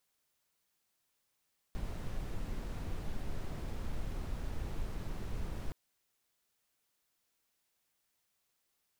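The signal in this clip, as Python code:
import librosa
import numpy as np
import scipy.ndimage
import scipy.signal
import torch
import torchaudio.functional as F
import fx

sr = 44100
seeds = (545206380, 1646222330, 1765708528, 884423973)

y = fx.noise_colour(sr, seeds[0], length_s=3.97, colour='brown', level_db=-37.0)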